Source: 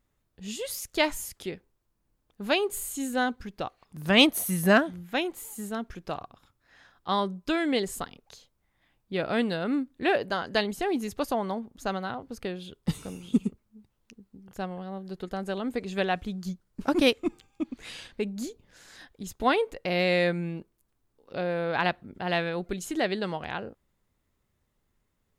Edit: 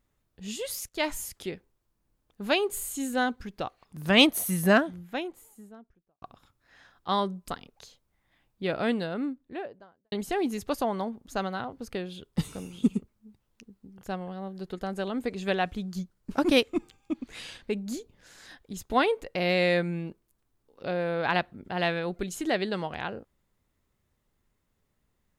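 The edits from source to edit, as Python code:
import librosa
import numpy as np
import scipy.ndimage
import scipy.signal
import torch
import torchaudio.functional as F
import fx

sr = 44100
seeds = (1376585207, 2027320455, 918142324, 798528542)

y = fx.studio_fade_out(x, sr, start_s=4.52, length_s=1.7)
y = fx.studio_fade_out(y, sr, start_s=9.15, length_s=1.47)
y = fx.edit(y, sr, fx.fade_in_from(start_s=0.89, length_s=0.26, floor_db=-13.0),
    fx.cut(start_s=7.48, length_s=0.5), tone=tone)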